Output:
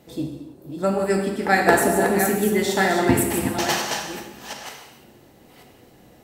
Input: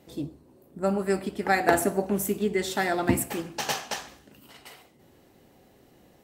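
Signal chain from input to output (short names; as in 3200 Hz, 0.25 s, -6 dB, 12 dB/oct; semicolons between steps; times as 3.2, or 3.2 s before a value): reverse delay 0.469 s, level -7 dB; non-linear reverb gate 0.35 s falling, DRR 2 dB; gain +4 dB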